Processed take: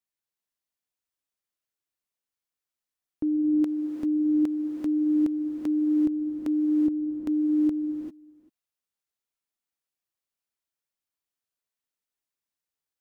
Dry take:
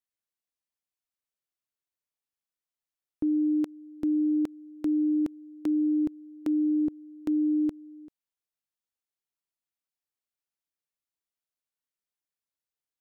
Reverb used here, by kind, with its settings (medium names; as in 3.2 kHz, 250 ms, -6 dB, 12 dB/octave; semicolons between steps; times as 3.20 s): gated-style reverb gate 420 ms rising, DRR 3.5 dB